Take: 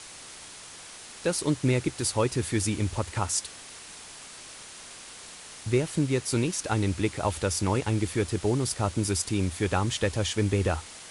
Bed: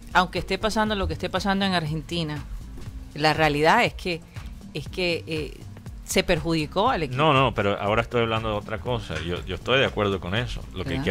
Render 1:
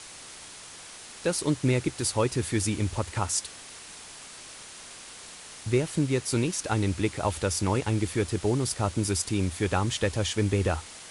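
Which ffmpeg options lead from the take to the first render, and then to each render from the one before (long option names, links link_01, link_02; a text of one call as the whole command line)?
ffmpeg -i in.wav -af anull out.wav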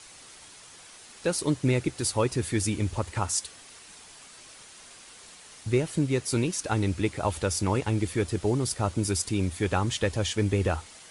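ffmpeg -i in.wav -af "afftdn=noise_reduction=6:noise_floor=-45" out.wav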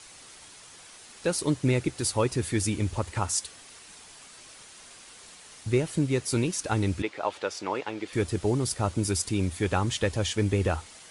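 ffmpeg -i in.wav -filter_complex "[0:a]asettb=1/sr,asplit=3[link_01][link_02][link_03];[link_01]atrim=end=7.024[link_04];[link_02]atrim=start=7.02:end=8.13,asetpts=PTS-STARTPTS,afade=type=in:duration=0.004:curve=qsin,afade=type=out:start_time=1.106:duration=0.004:curve=qsin,highpass=410,lowpass=4200[link_05];[link_03]atrim=start=8.126[link_06];[link_04][link_05]acrossfade=duration=0.004:curve1=hsin:curve2=qsin[link_07];[link_07][link_06]acrossfade=duration=0.004:curve1=qsin:curve2=hsin" out.wav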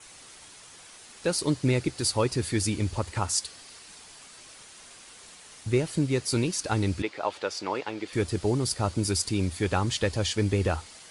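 ffmpeg -i in.wav -af "adynamicequalizer=threshold=0.00224:dfrequency=4600:dqfactor=4.3:tfrequency=4600:tqfactor=4.3:attack=5:release=100:ratio=0.375:range=3.5:mode=boostabove:tftype=bell" out.wav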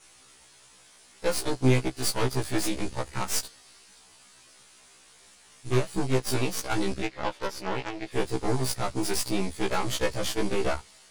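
ffmpeg -i in.wav -af "aeval=exprs='0.211*(cos(1*acos(clip(val(0)/0.211,-1,1)))-cos(1*PI/2))+0.0075*(cos(5*acos(clip(val(0)/0.211,-1,1)))-cos(5*PI/2))+0.0473*(cos(6*acos(clip(val(0)/0.211,-1,1)))-cos(6*PI/2))+0.0168*(cos(7*acos(clip(val(0)/0.211,-1,1)))-cos(7*PI/2))':channel_layout=same,afftfilt=real='re*1.73*eq(mod(b,3),0)':imag='im*1.73*eq(mod(b,3),0)':win_size=2048:overlap=0.75" out.wav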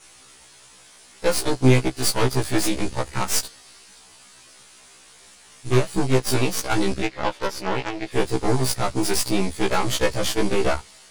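ffmpeg -i in.wav -af "volume=6dB" out.wav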